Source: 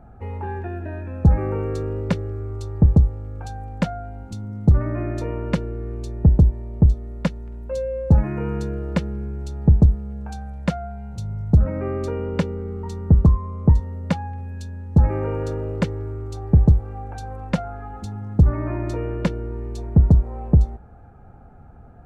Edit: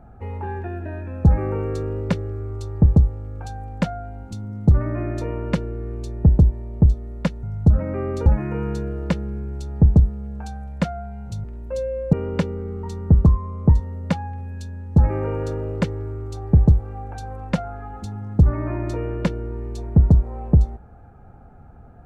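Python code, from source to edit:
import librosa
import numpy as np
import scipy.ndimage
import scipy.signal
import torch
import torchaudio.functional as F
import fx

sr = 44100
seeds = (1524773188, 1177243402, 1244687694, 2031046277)

y = fx.edit(x, sr, fx.swap(start_s=7.43, length_s=0.69, other_s=11.3, other_length_s=0.83), tone=tone)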